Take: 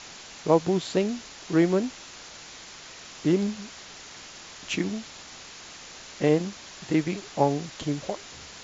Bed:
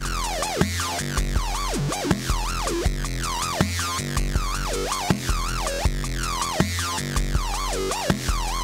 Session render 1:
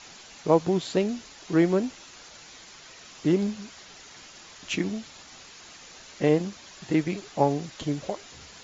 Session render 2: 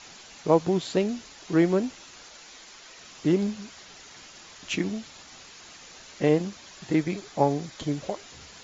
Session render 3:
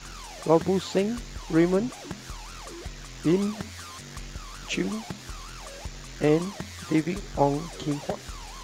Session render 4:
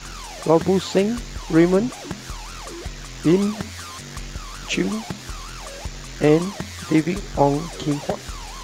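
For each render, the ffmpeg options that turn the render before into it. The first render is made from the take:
-af "afftdn=nr=6:nf=-45"
-filter_complex "[0:a]asettb=1/sr,asplit=3[a][b][c];[a]atrim=end=2.284[d];[b]atrim=start=2.28:end=2.98,asetpts=PTS-STARTPTS,afade=t=in:d=0.004:c=qsin,afade=t=out:st=0.696:d=0.004:c=qsin,equalizer=f=110:t=o:w=0.96:g=-14[e];[c]atrim=start=2.976[f];[d][e]acrossfade=d=0.004:c1=hsin:c2=qsin[g];[g][f]acrossfade=d=0.004:c1=qsin:c2=hsin,asettb=1/sr,asplit=3[h][i][j];[h]atrim=end=6.904[k];[i]atrim=start=6.9:end=7.92,asetpts=PTS-STARTPTS,afade=t=in:d=0.004:c=qsin,afade=t=out:st=1.016:d=0.004:c=qsin,bandreject=f=2.8k:w=12[l];[j]atrim=start=7.916[m];[k][l]acrossfade=d=0.004:c1=hsin:c2=qsin[n];[n][m]acrossfade=d=0.004:c1=qsin:c2=hsin"
-filter_complex "[1:a]volume=-16dB[a];[0:a][a]amix=inputs=2:normalize=0"
-af "volume=6dB,alimiter=limit=-3dB:level=0:latency=1"

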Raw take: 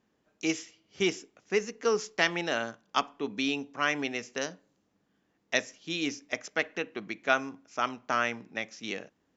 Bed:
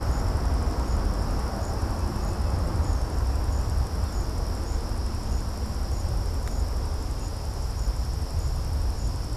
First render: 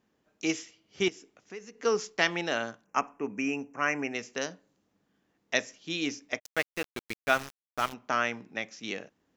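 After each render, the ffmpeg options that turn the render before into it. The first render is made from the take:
-filter_complex "[0:a]asettb=1/sr,asplit=3[a][b][c];[a]atrim=end=1.084[d];[b]atrim=start=1.08:end=1.8,asetpts=PTS-STARTPTS,afade=t=in:d=0.004:c=qsin,afade=t=out:st=0.716:d=0.004:c=qsin,acompressor=threshold=-50dB:ratio=2:attack=3.2:release=140:knee=1:detection=peak[e];[c]atrim=start=1.796[f];[d][e]acrossfade=d=0.004:c1=hsin:c2=qsin[g];[g][f]acrossfade=d=0.004:c1=qsin:c2=hsin,asplit=3[h][i][j];[h]afade=t=out:st=2.84:d=0.02[k];[i]asuperstop=centerf=3900:order=8:qfactor=1.4,afade=t=in:st=2.84:d=0.02,afade=t=out:st=4.13:d=0.02[l];[j]afade=t=in:st=4.13:d=0.02[m];[k][l][m]amix=inputs=3:normalize=0,asplit=3[n][o][p];[n]afade=t=out:st=6.38:d=0.02[q];[o]aeval=exprs='val(0)*gte(abs(val(0)),0.0224)':c=same,afade=t=in:st=6.38:d=0.02,afade=t=out:st=7.92:d=0.02[r];[p]afade=t=in:st=7.92:d=0.02[s];[q][r][s]amix=inputs=3:normalize=0"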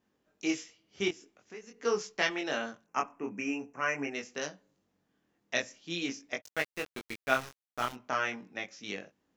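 -af "flanger=delay=20:depth=4.7:speed=0.45"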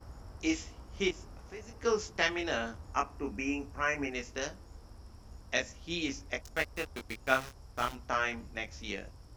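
-filter_complex "[1:a]volume=-23dB[a];[0:a][a]amix=inputs=2:normalize=0"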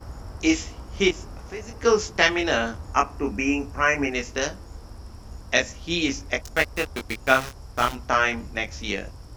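-af "volume=10.5dB,alimiter=limit=-1dB:level=0:latency=1"

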